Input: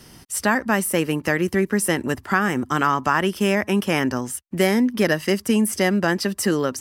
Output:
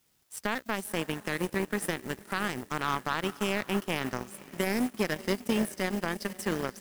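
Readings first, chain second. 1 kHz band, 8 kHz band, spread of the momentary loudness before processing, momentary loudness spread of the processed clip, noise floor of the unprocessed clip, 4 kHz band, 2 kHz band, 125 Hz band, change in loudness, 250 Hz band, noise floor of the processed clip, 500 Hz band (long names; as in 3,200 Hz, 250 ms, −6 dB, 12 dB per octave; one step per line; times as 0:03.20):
−10.5 dB, −12.5 dB, 3 LU, 5 LU, −49 dBFS, −7.5 dB, −10.5 dB, −11.0 dB, −10.5 dB, −11.5 dB, −60 dBFS, −11.0 dB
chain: on a send: feedback delay with all-pass diffusion 518 ms, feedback 50%, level −11 dB
on the sum: background noise white −41 dBFS
power curve on the samples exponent 2
brickwall limiter −15 dBFS, peak gain reduction 10.5 dB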